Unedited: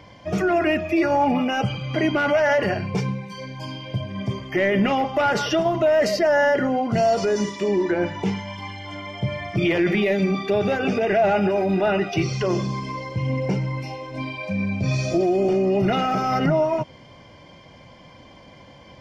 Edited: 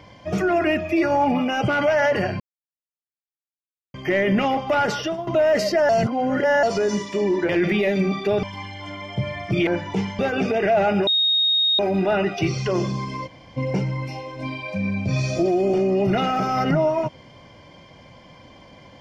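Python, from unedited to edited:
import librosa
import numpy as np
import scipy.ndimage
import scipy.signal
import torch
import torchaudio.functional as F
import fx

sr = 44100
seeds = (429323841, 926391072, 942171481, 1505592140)

y = fx.edit(x, sr, fx.cut(start_s=1.68, length_s=0.47),
    fx.silence(start_s=2.87, length_s=1.54),
    fx.fade_out_to(start_s=5.31, length_s=0.43, floor_db=-12.5),
    fx.reverse_span(start_s=6.36, length_s=0.74),
    fx.swap(start_s=7.96, length_s=0.52, other_s=9.72, other_length_s=0.94),
    fx.insert_tone(at_s=11.54, length_s=0.72, hz=3730.0, db=-16.0),
    fx.room_tone_fill(start_s=13.02, length_s=0.3, crossfade_s=0.02), tone=tone)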